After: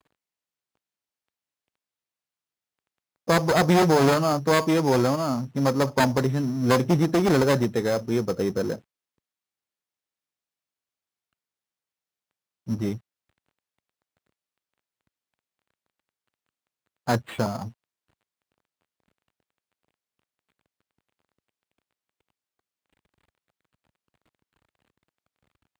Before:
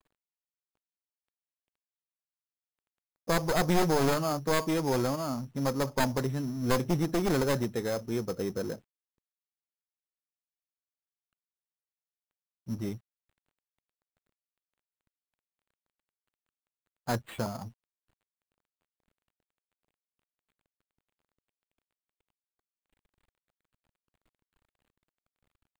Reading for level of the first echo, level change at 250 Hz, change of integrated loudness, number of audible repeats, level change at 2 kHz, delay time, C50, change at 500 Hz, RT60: no echo, +7.5 dB, +7.0 dB, no echo, +7.0 dB, no echo, no reverb, +7.5 dB, no reverb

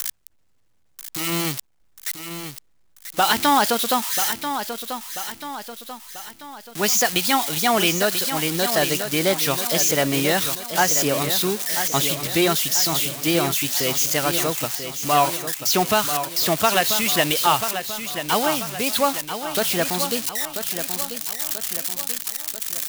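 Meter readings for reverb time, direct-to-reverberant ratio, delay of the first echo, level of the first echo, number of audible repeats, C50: no reverb, no reverb, 988 ms, -9.0 dB, 5, no reverb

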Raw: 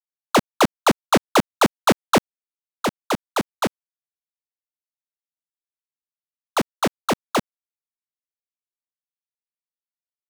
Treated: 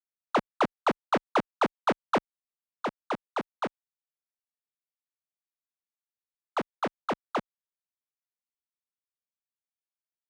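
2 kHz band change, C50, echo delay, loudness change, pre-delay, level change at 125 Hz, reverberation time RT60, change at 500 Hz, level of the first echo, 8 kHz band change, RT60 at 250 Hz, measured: -9.0 dB, no reverb, no echo, -9.0 dB, no reverb, -13.5 dB, no reverb, -8.5 dB, no echo, -23.0 dB, no reverb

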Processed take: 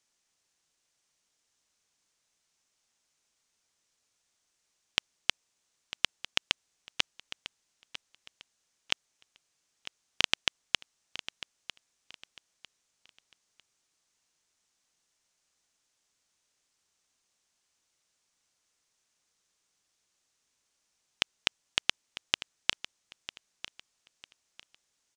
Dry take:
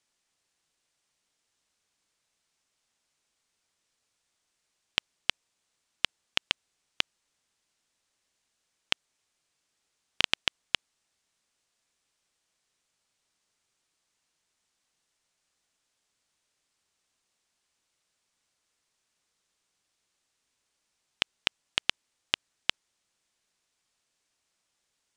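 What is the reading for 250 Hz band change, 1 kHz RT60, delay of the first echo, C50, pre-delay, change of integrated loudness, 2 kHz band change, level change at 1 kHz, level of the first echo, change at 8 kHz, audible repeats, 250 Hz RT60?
-1.0 dB, no reverb, 950 ms, no reverb, no reverb, -1.0 dB, -0.5 dB, -1.0 dB, -14.5 dB, +3.5 dB, 2, no reverb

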